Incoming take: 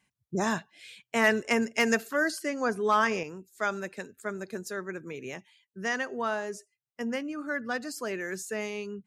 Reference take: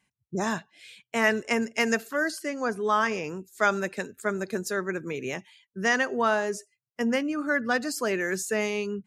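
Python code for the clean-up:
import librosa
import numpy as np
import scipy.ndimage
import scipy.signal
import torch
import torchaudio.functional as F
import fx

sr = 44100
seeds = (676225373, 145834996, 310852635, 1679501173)

y = fx.fix_declip(x, sr, threshold_db=-13.5)
y = fx.gain(y, sr, db=fx.steps((0.0, 0.0), (3.23, 6.5)))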